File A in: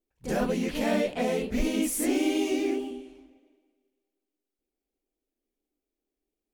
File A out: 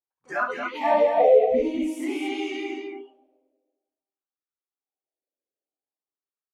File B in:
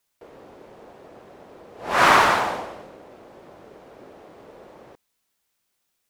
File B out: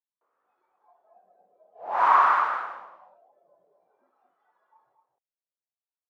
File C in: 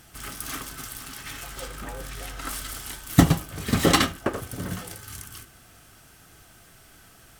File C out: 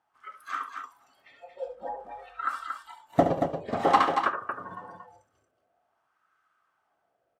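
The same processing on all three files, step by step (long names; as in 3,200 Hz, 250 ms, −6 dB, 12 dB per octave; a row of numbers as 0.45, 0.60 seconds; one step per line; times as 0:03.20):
noise reduction from a noise print of the clip's start 19 dB
LFO wah 0.51 Hz 550–1,300 Hz, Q 4.1
multi-tap delay 70/230 ms −9.5/−6 dB
normalise the peak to −6 dBFS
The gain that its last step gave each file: +18.0, +1.0, +9.5 decibels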